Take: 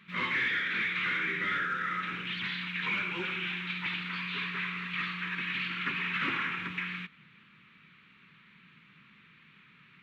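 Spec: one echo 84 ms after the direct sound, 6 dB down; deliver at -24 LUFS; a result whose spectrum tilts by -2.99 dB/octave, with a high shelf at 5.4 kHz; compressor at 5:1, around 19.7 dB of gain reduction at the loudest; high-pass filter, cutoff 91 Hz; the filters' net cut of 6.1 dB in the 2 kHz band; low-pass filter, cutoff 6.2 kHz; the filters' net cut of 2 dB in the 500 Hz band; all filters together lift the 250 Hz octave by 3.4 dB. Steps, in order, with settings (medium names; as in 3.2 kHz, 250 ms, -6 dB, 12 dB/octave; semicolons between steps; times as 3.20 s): high-pass 91 Hz; low-pass 6.2 kHz; peaking EQ 250 Hz +7.5 dB; peaking EQ 500 Hz -7.5 dB; peaking EQ 2 kHz -8 dB; treble shelf 5.4 kHz +6.5 dB; compression 5:1, threshold -53 dBFS; delay 84 ms -6 dB; trim +27.5 dB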